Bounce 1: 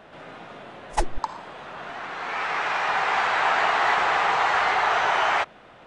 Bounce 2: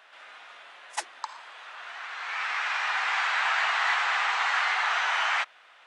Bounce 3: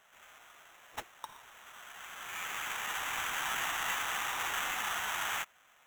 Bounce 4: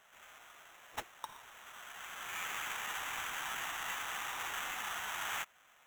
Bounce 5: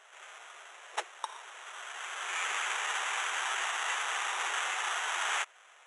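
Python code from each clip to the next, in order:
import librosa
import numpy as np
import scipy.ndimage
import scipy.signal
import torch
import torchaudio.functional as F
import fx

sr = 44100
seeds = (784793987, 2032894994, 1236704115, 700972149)

y1 = scipy.signal.sosfilt(scipy.signal.butter(2, 1400.0, 'highpass', fs=sr, output='sos'), x)
y2 = fx.sample_hold(y1, sr, seeds[0], rate_hz=4700.0, jitter_pct=0)
y2 = y2 * librosa.db_to_amplitude(-9.0)
y3 = fx.rider(y2, sr, range_db=4, speed_s=0.5)
y3 = y3 * librosa.db_to_amplitude(-4.0)
y4 = fx.brickwall_bandpass(y3, sr, low_hz=340.0, high_hz=11000.0)
y4 = y4 * librosa.db_to_amplitude(7.0)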